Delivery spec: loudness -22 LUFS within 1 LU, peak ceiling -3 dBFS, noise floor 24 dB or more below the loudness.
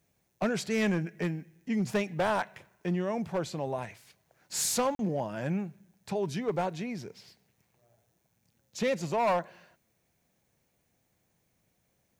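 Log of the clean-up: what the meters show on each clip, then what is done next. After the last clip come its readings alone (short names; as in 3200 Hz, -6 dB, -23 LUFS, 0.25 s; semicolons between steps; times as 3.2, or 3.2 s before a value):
clipped 1.0%; flat tops at -22.5 dBFS; dropouts 1; longest dropout 42 ms; loudness -31.5 LUFS; peak -22.5 dBFS; loudness target -22.0 LUFS
-> clip repair -22.5 dBFS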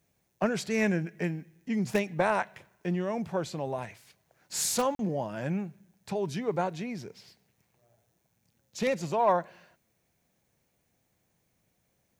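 clipped 0.0%; dropouts 1; longest dropout 42 ms
-> interpolate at 4.95, 42 ms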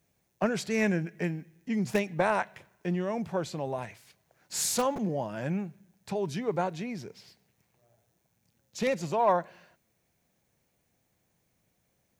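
dropouts 0; loudness -31.0 LUFS; peak -13.5 dBFS; loudness target -22.0 LUFS
-> gain +9 dB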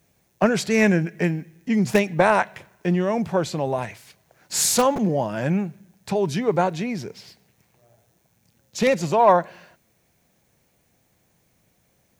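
loudness -22.0 LUFS; peak -4.5 dBFS; noise floor -66 dBFS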